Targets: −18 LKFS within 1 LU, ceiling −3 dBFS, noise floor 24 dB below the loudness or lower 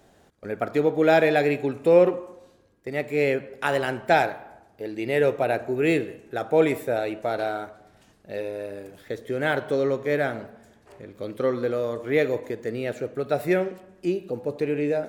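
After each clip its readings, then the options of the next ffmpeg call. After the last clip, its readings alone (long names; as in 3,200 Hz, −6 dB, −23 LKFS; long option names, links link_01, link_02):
integrated loudness −24.5 LKFS; sample peak −6.5 dBFS; target loudness −18.0 LKFS
→ -af "volume=6.5dB,alimiter=limit=-3dB:level=0:latency=1"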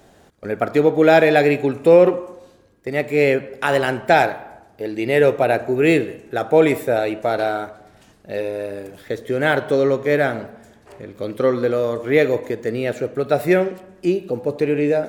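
integrated loudness −18.5 LKFS; sample peak −3.0 dBFS; background noise floor −52 dBFS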